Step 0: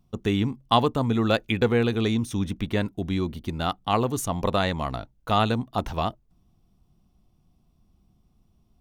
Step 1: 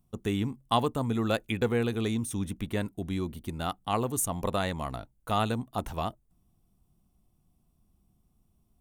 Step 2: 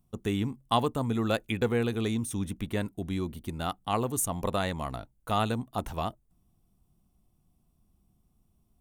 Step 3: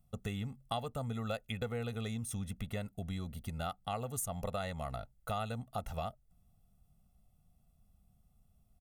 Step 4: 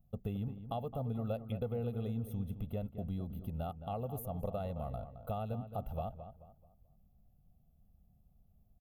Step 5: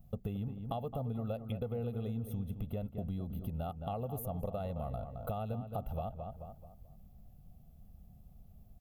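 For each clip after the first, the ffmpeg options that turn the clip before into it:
-af "highshelf=f=6.8k:t=q:w=1.5:g=8.5,volume=-5.5dB"
-af anull
-af "aecho=1:1:1.5:0.8,acompressor=threshold=-33dB:ratio=3,volume=-3.5dB"
-filter_complex "[0:a]firequalizer=gain_entry='entry(570,0);entry(1900,-22);entry(2800,-11);entry(5600,-24);entry(8100,-28);entry(12000,-3)':delay=0.05:min_phase=1,asplit=2[a][b];[b]adelay=217,lowpass=f=2.2k:p=1,volume=-10.5dB,asplit=2[c][d];[d]adelay=217,lowpass=f=2.2k:p=1,volume=0.36,asplit=2[e][f];[f]adelay=217,lowpass=f=2.2k:p=1,volume=0.36,asplit=2[g][h];[h]adelay=217,lowpass=f=2.2k:p=1,volume=0.36[i];[c][e][g][i]amix=inputs=4:normalize=0[j];[a][j]amix=inputs=2:normalize=0,volume=1dB"
-af "acompressor=threshold=-50dB:ratio=2.5,volume=10.5dB"

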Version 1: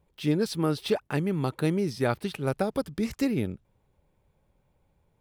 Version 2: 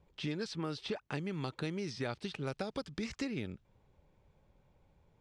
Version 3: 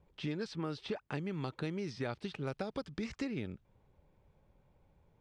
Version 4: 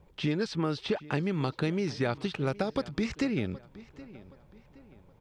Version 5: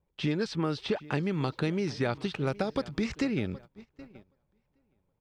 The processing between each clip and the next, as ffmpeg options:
-filter_complex "[0:a]lowpass=f=6.9k:w=0.5412,lowpass=f=6.9k:w=1.3066,acrossover=split=1100|2600[a][b][c];[a]acompressor=threshold=-39dB:ratio=4[d];[b]acompressor=threshold=-50dB:ratio=4[e];[c]acompressor=threshold=-48dB:ratio=4[f];[d][e][f]amix=inputs=3:normalize=0,volume=1dB"
-af "highshelf=f=3.7k:g=-7.5"
-filter_complex "[0:a]asplit=2[a][b];[b]adelay=771,lowpass=f=4.7k:p=1,volume=-19dB,asplit=2[c][d];[d]adelay=771,lowpass=f=4.7k:p=1,volume=0.4,asplit=2[e][f];[f]adelay=771,lowpass=f=4.7k:p=1,volume=0.4[g];[a][c][e][g]amix=inputs=4:normalize=0,volume=8.5dB"
-af "agate=range=-18dB:threshold=-46dB:ratio=16:detection=peak"

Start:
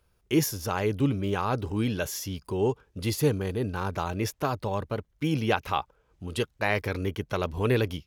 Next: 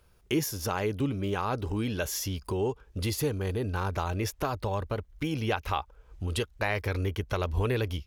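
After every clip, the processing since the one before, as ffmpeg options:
-af "acompressor=threshold=-37dB:ratio=2,asubboost=boost=7:cutoff=59,volume=5.5dB"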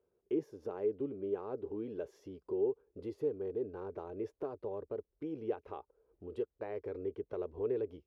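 -af "bandpass=f=410:t=q:w=3.5:csg=0,volume=-1dB"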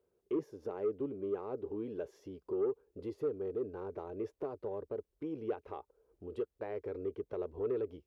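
-af "asoftclip=type=tanh:threshold=-26dB,volume=1dB"

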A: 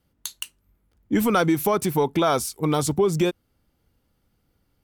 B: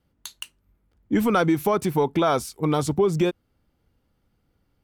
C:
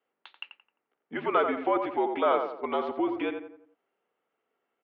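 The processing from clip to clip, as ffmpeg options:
-af "highshelf=f=5k:g=-8.5"
-filter_complex "[0:a]highpass=f=450:t=q:w=0.5412,highpass=f=450:t=q:w=1.307,lowpass=f=3.1k:t=q:w=0.5176,lowpass=f=3.1k:t=q:w=0.7071,lowpass=f=3.1k:t=q:w=1.932,afreqshift=-60,asplit=2[a][b];[b]adelay=87,lowpass=f=1.8k:p=1,volume=-5.5dB,asplit=2[c][d];[d]adelay=87,lowpass=f=1.8k:p=1,volume=0.44,asplit=2[e][f];[f]adelay=87,lowpass=f=1.8k:p=1,volume=0.44,asplit=2[g][h];[h]adelay=87,lowpass=f=1.8k:p=1,volume=0.44,asplit=2[i][j];[j]adelay=87,lowpass=f=1.8k:p=1,volume=0.44[k];[a][c][e][g][i][k]amix=inputs=6:normalize=0,volume=-2.5dB"

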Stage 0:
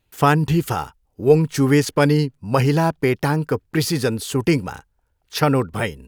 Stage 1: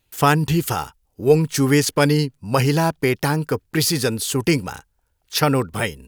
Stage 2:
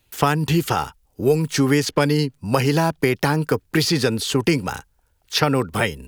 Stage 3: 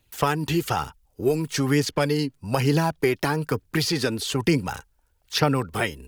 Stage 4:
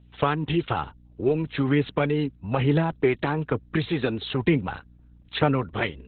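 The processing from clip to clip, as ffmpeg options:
-af "highshelf=f=3k:g=8,volume=-1dB"
-filter_complex "[0:a]acrossover=split=160|5500[a][b][c];[a]acompressor=threshold=-33dB:ratio=4[d];[b]acompressor=threshold=-20dB:ratio=4[e];[c]acompressor=threshold=-41dB:ratio=4[f];[d][e][f]amix=inputs=3:normalize=0,volume=4.5dB"
-af "aphaser=in_gain=1:out_gain=1:delay=3.5:decay=0.37:speed=1.1:type=triangular,volume=-4.5dB"
-af "aeval=exprs='val(0)+0.00316*(sin(2*PI*60*n/s)+sin(2*PI*2*60*n/s)/2+sin(2*PI*3*60*n/s)/3+sin(2*PI*4*60*n/s)/4+sin(2*PI*5*60*n/s)/5)':c=same" -ar 48000 -c:a libopus -b:a 8k

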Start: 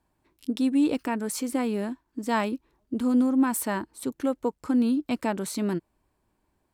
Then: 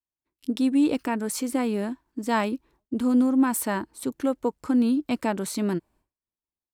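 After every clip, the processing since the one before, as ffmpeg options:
-af "agate=range=-33dB:threshold=-54dB:ratio=3:detection=peak,volume=1.5dB"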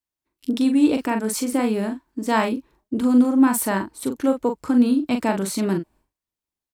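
-filter_complex "[0:a]asplit=2[a][b];[b]adelay=41,volume=-6.5dB[c];[a][c]amix=inputs=2:normalize=0,volume=3.5dB"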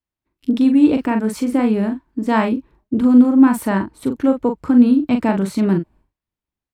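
-af "bass=f=250:g=7,treble=f=4k:g=-11,volume=2dB"

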